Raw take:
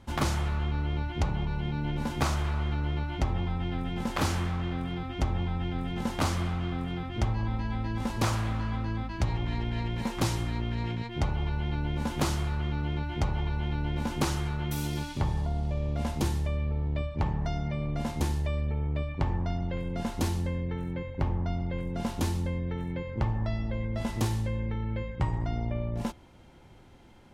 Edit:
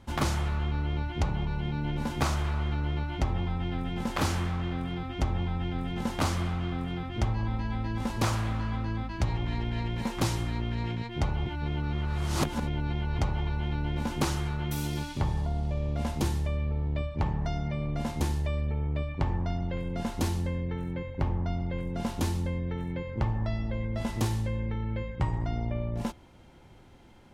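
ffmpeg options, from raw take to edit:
-filter_complex "[0:a]asplit=3[a][b][c];[a]atrim=end=11.462[d];[b]atrim=start=11.458:end=13.192,asetpts=PTS-STARTPTS,areverse[e];[c]atrim=start=13.188[f];[d][e]acrossfade=d=0.004:c1=hsin:c2=hsin[g];[g][f]acrossfade=d=0.004:c1=hsin:c2=hsin"

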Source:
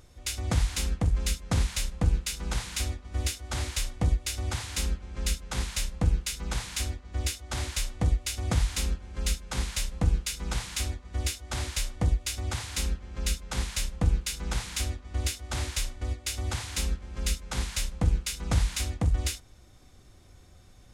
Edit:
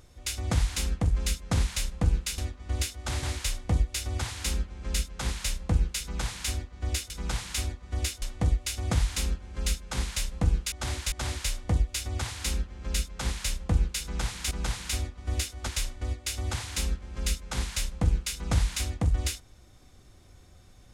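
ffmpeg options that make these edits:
-filter_complex "[0:a]asplit=9[a][b][c][d][e][f][g][h][i];[a]atrim=end=2.382[j];[b]atrim=start=14.828:end=15.682[k];[c]atrim=start=3.548:end=7.422[l];[d]atrim=start=10.318:end=11.442[m];[e]atrim=start=7.818:end=10.322[n];[f]atrim=start=7.418:end=7.822[o];[g]atrim=start=11.438:end=14.832[p];[h]atrim=start=2.378:end=3.552[q];[i]atrim=start=15.678[r];[j][k]acrossfade=d=0.004:c1=hsin:c2=hsin[s];[s][l]acrossfade=d=0.004:c1=hsin:c2=hsin[t];[t][m]acrossfade=d=0.004:c1=hsin:c2=hsin[u];[u][n]acrossfade=d=0.004:c1=hsin:c2=hsin[v];[v][o]acrossfade=d=0.004:c1=hsin:c2=hsin[w];[w][p]acrossfade=d=0.004:c1=hsin:c2=hsin[x];[x][q]acrossfade=d=0.004:c1=hsin:c2=hsin[y];[y][r]acrossfade=d=0.004:c1=hsin:c2=hsin"

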